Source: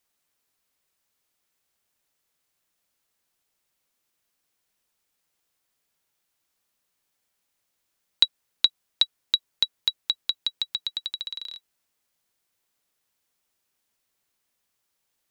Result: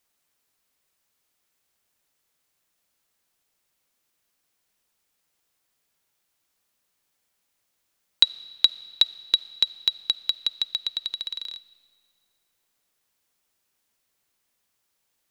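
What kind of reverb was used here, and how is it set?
comb and all-pass reverb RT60 2.2 s, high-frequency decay 0.85×, pre-delay 10 ms, DRR 18.5 dB
level +2 dB

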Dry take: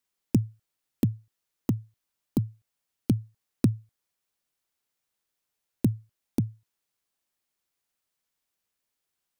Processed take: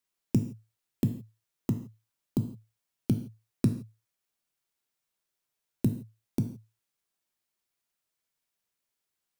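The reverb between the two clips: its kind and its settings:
reverb whose tail is shaped and stops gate 190 ms falling, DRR 5.5 dB
level −3 dB

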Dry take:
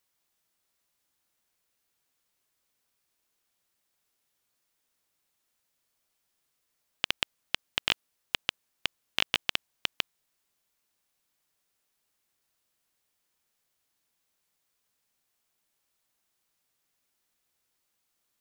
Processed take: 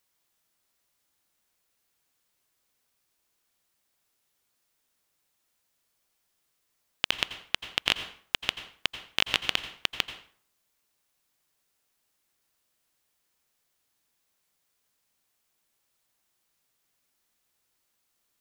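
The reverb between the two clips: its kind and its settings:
dense smooth reverb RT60 0.51 s, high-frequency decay 0.75×, pre-delay 75 ms, DRR 10.5 dB
level +2 dB

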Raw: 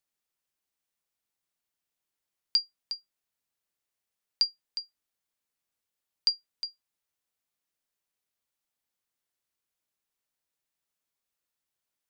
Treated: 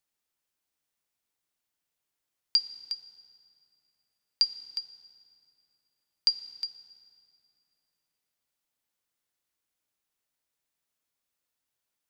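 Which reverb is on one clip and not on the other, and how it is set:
feedback delay network reverb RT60 2.7 s, low-frequency decay 1.35×, high-frequency decay 0.75×, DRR 12 dB
level +1.5 dB

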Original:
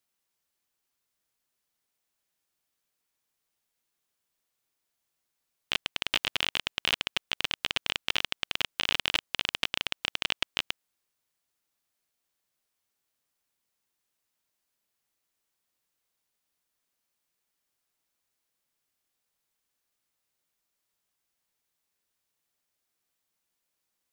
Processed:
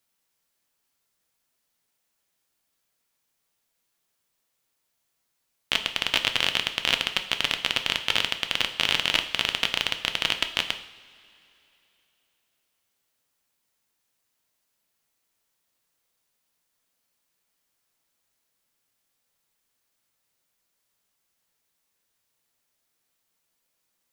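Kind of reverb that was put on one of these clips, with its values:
coupled-rooms reverb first 0.61 s, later 3.2 s, from −19 dB, DRR 6.5 dB
level +4.5 dB

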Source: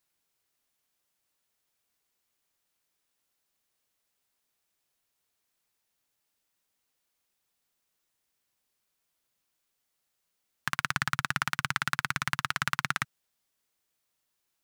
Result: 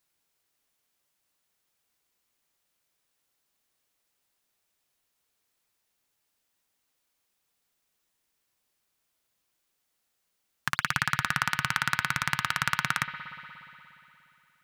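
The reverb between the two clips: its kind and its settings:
spring reverb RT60 3 s, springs 59 ms, chirp 45 ms, DRR 8 dB
level +2 dB

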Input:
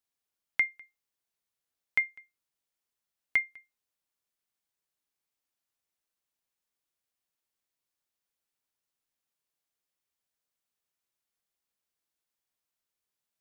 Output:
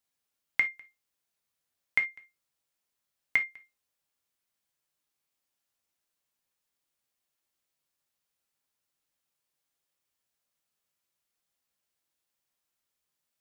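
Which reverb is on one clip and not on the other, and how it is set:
reverb whose tail is shaped and stops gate 90 ms falling, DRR 5.5 dB
level +2.5 dB

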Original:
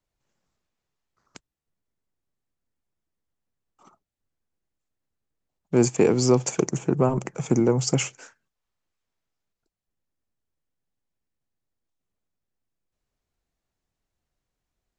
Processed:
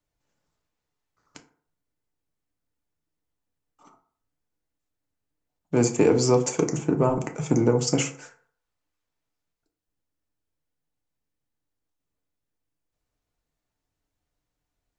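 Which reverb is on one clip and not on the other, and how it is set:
feedback delay network reverb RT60 0.52 s, low-frequency decay 0.85×, high-frequency decay 0.5×, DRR 4 dB
level −1 dB

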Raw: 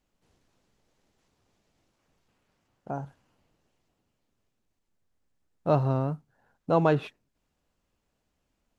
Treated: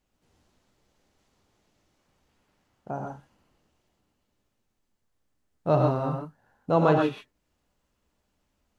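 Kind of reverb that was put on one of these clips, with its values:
reverb whose tail is shaped and stops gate 160 ms rising, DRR 0.5 dB

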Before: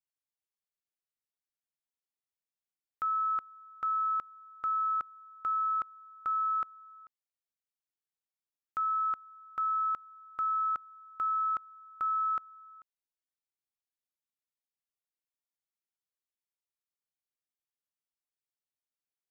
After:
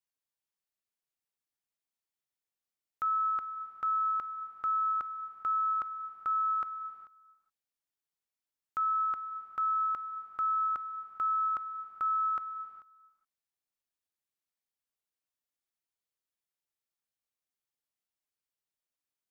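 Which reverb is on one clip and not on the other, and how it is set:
reverb whose tail is shaped and stops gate 440 ms flat, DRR 9.5 dB

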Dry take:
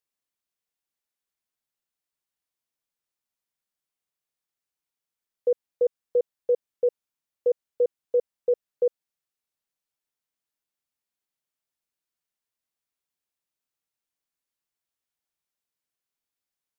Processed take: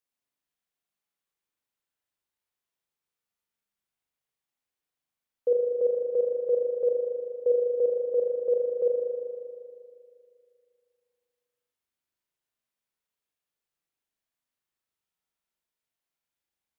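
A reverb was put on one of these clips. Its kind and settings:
spring reverb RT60 2.4 s, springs 39 ms, chirp 25 ms, DRR −1.5 dB
level −2.5 dB

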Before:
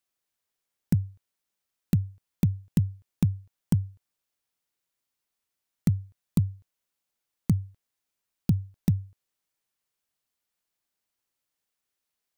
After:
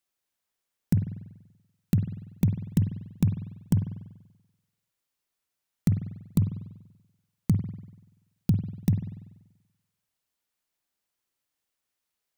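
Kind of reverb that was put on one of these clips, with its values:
spring reverb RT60 1 s, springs 48 ms, chirp 50 ms, DRR 7 dB

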